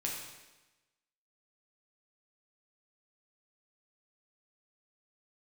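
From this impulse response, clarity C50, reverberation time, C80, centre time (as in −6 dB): 2.0 dB, 1.1 s, 4.5 dB, 58 ms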